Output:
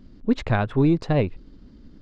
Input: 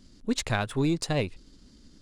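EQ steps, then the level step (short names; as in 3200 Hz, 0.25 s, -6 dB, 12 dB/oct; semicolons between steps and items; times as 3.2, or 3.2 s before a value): tape spacing loss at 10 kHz 36 dB; +8.0 dB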